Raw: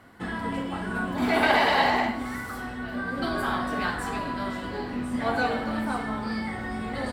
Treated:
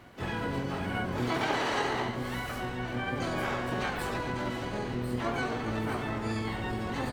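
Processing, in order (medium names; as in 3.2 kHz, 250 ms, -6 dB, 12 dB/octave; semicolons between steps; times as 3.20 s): compression 3:1, threshold -29 dBFS, peak gain reduction 9.5 dB; harmony voices -12 st -1 dB, +7 st -5 dB, +12 st -9 dB; trim -3.5 dB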